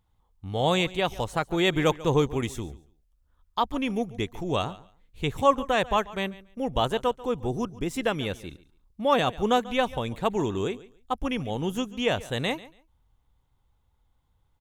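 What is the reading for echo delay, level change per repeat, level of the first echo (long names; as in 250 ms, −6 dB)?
141 ms, −14.5 dB, −19.0 dB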